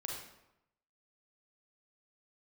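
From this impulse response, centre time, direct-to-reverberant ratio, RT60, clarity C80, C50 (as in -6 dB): 52 ms, -1.5 dB, 0.90 s, 5.0 dB, 1.5 dB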